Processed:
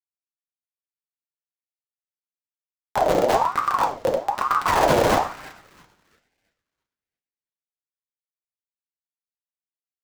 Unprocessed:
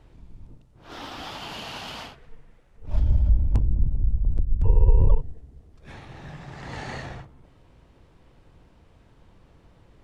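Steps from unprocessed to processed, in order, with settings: spectral contrast reduction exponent 0.2; Schmitt trigger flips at -9.5 dBFS; thinning echo 336 ms, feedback 32%, high-pass 340 Hz, level -18 dB; on a send at -1 dB: reverberation RT60 0.45 s, pre-delay 3 ms; on the sum: ring modulator with a swept carrier 860 Hz, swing 40%, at 1.1 Hz; trim +5 dB

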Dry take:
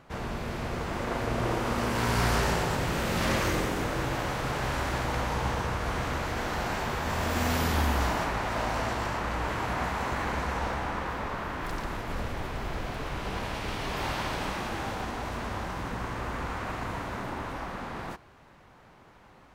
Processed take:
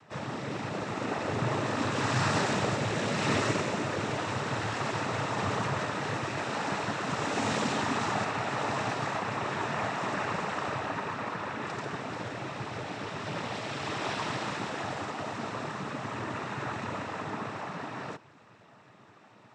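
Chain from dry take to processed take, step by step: noise-vocoded speech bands 12; 5.38–5.86 s: level flattener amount 50%

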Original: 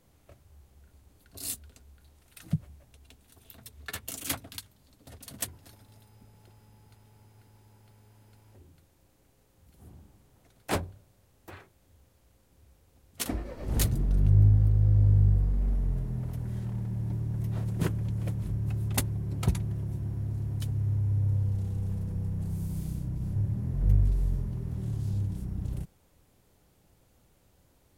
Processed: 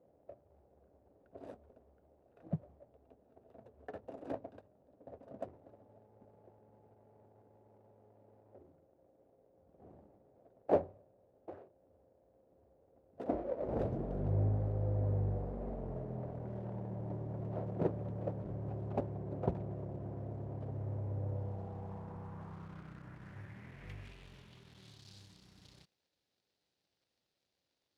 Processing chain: median filter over 41 samples; band-pass sweep 600 Hz -> 4.4 kHz, 21.31–25.08 s; trim +10.5 dB

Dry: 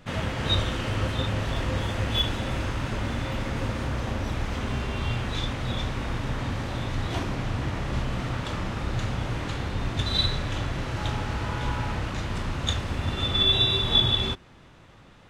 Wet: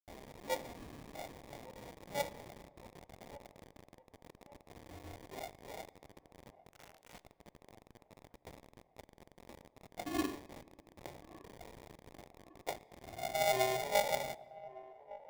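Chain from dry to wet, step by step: differentiator; loudest bins only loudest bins 32; sample-and-hold 31×; 6.69–7.23 s: static phaser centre 1.4 kHz, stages 6; word length cut 8-bit, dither none; feedback echo behind a band-pass 1159 ms, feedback 49%, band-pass 700 Hz, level -18 dB; on a send at -20 dB: reverberation RT60 1.8 s, pre-delay 15 ms; on the sum: sliding maximum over 3 samples; trim -3 dB

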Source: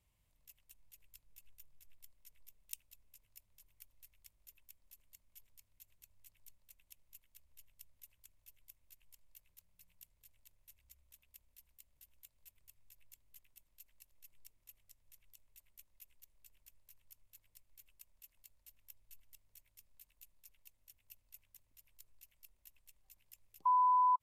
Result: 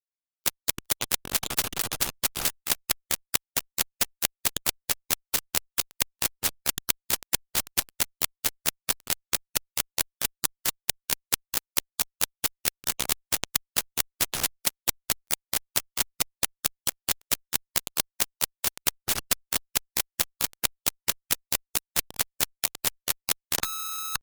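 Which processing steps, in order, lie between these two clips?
median filter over 3 samples; fuzz box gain 64 dB, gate -58 dBFS; pitch shift +4.5 st; spectrum-flattening compressor 4:1; trim +6 dB

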